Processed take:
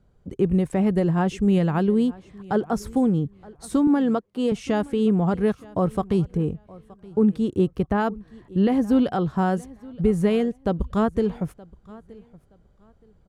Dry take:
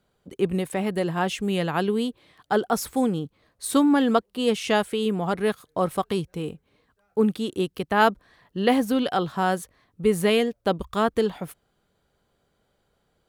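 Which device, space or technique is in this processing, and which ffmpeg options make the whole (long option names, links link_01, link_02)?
over-bright horn tweeter: -filter_complex "[0:a]highshelf=frequency=4800:width_type=q:width=1.5:gain=6,alimiter=limit=-15dB:level=0:latency=1:release=354,asettb=1/sr,asplit=3[link_01][link_02][link_03];[link_01]atrim=end=3.874[link_04];[link_02]atrim=start=3.87:end=4.52,asetpts=PTS-STARTPTS,afade=type=in:duration=0.004:curve=qsin,afade=type=out:start_time=0.646:duration=0.004:curve=qsin,highpass=230[link_05];[link_03]atrim=start=4.516[link_06];[link_04][link_05]acrossfade=duration=0.004:curve1=hsin:curve2=qsin[link_07];[link_07][link_06]acrossfade=duration=0.004:curve1=qsin:curve2=hsin,aemphasis=mode=reproduction:type=riaa,aecho=1:1:922|1844:0.0794|0.0175,asettb=1/sr,asplit=3[link_08][link_09][link_10];[link_08]atrim=end=6.374[link_11];[link_09]atrim=start=6.37:end=7.98,asetpts=PTS-STARTPTS,afade=type=in:duration=0.004:curve=qsin,afade=type=out:start_time=1.606:duration=0.004:curve=qsin,adynamicequalizer=threshold=0.00708:dfrequency=1700:dqfactor=0.7:tfrequency=1700:tqfactor=0.7:attack=5:release=100:ratio=0.375:range=2:mode=cutabove:tftype=highshelf[link_12];[link_10]atrim=start=7.976[link_13];[link_11][link_12]acrossfade=duration=0.004:curve1=hsin:curve2=qsin[link_14];[link_14][link_13]acrossfade=duration=0.004:curve1=qsin:curve2=hsin"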